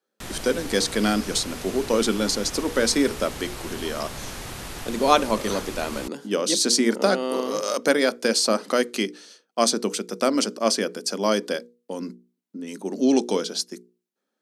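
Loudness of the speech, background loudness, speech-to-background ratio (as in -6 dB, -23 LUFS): -23.5 LUFS, -35.5 LUFS, 12.0 dB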